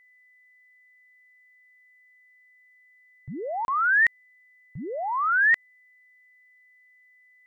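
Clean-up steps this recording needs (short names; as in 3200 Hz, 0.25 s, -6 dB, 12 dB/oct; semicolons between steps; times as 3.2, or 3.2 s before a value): notch 2000 Hz, Q 30; interpolate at 3.65, 31 ms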